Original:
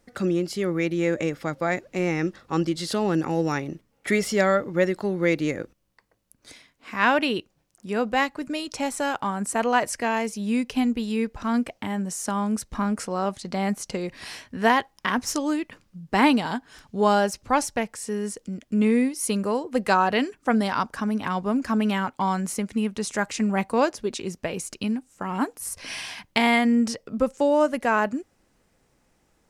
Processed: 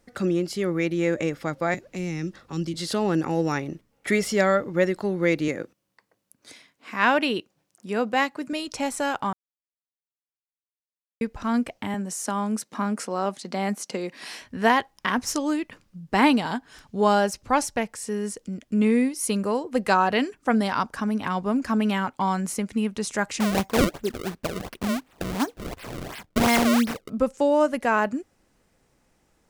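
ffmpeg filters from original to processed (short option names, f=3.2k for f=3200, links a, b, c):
-filter_complex "[0:a]asettb=1/sr,asplit=3[a][b][c];[a]atrim=end=1.744[d];[b]atrim=start=1.74:end=2.74,asetpts=PTS-STARTPTS,afade=t=in:d=0.004:c=qsin,afade=t=out:st=0.996:d=0.004:c=qsin,acrossover=split=270|3000[e][f][g];[f]acompressor=threshold=-38dB:ratio=6:attack=3.2:release=140:knee=2.83:detection=peak[h];[e][h][g]amix=inputs=3:normalize=0[i];[c]atrim=start=2.736[j];[d][i]acrossfade=d=0.004:c1=hsin:c2=qsin[k];[k][j]acrossfade=d=0.004:c1=qsin:c2=hsin,asettb=1/sr,asplit=3[l][m][n];[l]atrim=end=5.484[o];[m]atrim=start=5.48:end=8.53,asetpts=PTS-STARTPTS,afade=t=in:d=0.004:c=qsin,afade=t=out:st=3.046:d=0.004:c=qsin,highpass=140[p];[n]atrim=start=8.526[q];[o][p]acrossfade=d=0.004:c1=hsin:c2=qsin[r];[r][q]acrossfade=d=0.004:c1=qsin:c2=hsin,asettb=1/sr,asplit=3[s][t][u];[s]atrim=end=11.944[v];[t]atrim=start=11.94:end=14.42,asetpts=PTS-STARTPTS,afade=t=in:d=0.004:c=qsin,afade=t=out:st=2.476:d=0.004:c=qsin,highpass=f=190:w=0.5412,highpass=f=190:w=1.3066[w];[u]atrim=start=14.416[x];[v][w]acrossfade=d=0.004:c1=hsin:c2=qsin[y];[y][x]acrossfade=d=0.004:c1=qsin:c2=hsin,asettb=1/sr,asplit=3[z][aa][ab];[z]atrim=end=23.404[ac];[aa]atrim=start=23.4:end=27.1,asetpts=PTS-STARTPTS,afade=t=in:d=0.004:c=qsin,afade=t=out:st=3.696:d=0.004:c=qsin,acrusher=samples=30:mix=1:aa=0.000001:lfo=1:lforange=48:lforate=2.8[ad];[ab]atrim=start=27.096[ae];[ac][ad]acrossfade=d=0.004:c1=hsin:c2=qsin[af];[af][ae]acrossfade=d=0.004:c1=qsin:c2=hsin,asplit=3[ag][ah][ai];[ag]atrim=end=9.33,asetpts=PTS-STARTPTS,afade=t=out:st=9.326:d=0.004:c=hsin[aj];[ah]atrim=start=9.33:end=11.21,asetpts=PTS-STARTPTS,volume=0[ak];[ai]atrim=start=11.21,asetpts=PTS-STARTPTS,afade=t=in:d=0.004:c=hsin[al];[aj][ak][al]concat=n=3:v=0:a=1"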